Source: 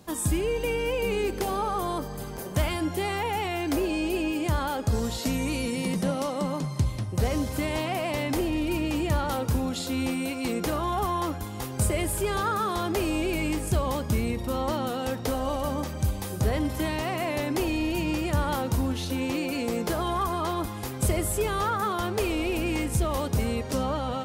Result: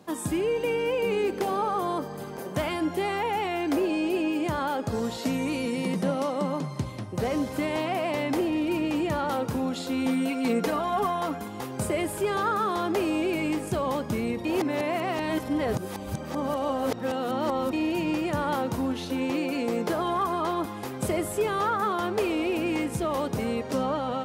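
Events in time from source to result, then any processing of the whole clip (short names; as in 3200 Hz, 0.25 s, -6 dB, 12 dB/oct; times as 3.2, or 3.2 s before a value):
10.05–11.48 comb 4.4 ms
14.45–17.73 reverse
whole clip: HPF 180 Hz 12 dB/oct; high shelf 3700 Hz -9.5 dB; gain +2 dB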